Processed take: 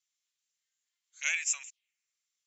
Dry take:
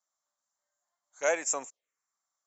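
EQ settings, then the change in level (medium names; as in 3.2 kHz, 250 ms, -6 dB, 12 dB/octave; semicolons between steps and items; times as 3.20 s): resonant high-pass 2.6 kHz, resonance Q 3; band-pass filter 3.3 kHz, Q 0.53; +2.0 dB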